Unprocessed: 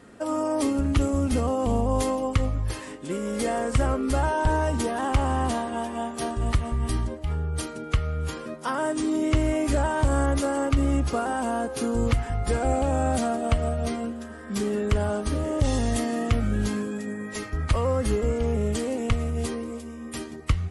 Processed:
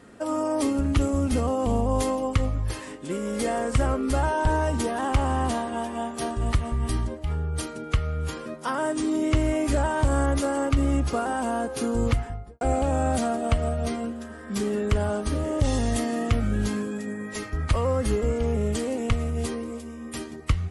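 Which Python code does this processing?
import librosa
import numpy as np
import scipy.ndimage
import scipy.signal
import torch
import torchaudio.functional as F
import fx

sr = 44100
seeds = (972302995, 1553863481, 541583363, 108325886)

y = fx.studio_fade_out(x, sr, start_s=12.07, length_s=0.54)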